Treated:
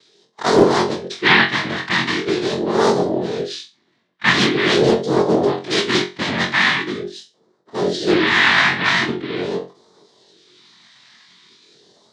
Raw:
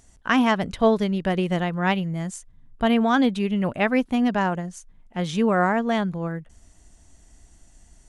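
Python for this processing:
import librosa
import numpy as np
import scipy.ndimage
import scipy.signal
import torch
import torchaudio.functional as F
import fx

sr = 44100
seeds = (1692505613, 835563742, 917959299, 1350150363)

p1 = fx.dynamic_eq(x, sr, hz=600.0, q=1.9, threshold_db=-37.0, ratio=4.0, max_db=-7)
p2 = fx.rider(p1, sr, range_db=10, speed_s=2.0)
p3 = p1 + (p2 * 10.0 ** (-1.0 / 20.0))
p4 = fx.stretch_grains(p3, sr, factor=1.5, grain_ms=28.0)
p5 = fx.noise_vocoder(p4, sr, seeds[0], bands=3)
p6 = fx.phaser_stages(p5, sr, stages=2, low_hz=380.0, high_hz=1700.0, hz=0.43, feedback_pct=25)
p7 = p6 + fx.room_flutter(p6, sr, wall_m=3.8, rt60_s=0.28, dry=0)
p8 = fx.formant_shift(p7, sr, semitones=5)
p9 = fx.cabinet(p8, sr, low_hz=270.0, low_slope=12, high_hz=4800.0, hz=(280.0, 520.0, 990.0, 1800.0, 2600.0, 3800.0), db=(-7, -8, 5, 6, -6, 6))
p10 = fx.doppler_dist(p9, sr, depth_ms=0.39)
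y = p10 * 10.0 ** (6.0 / 20.0)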